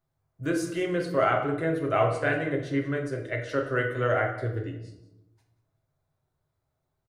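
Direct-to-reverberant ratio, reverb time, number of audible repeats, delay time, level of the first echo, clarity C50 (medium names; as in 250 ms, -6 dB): 1.5 dB, 0.85 s, 1, 185 ms, -16.5 dB, 7.0 dB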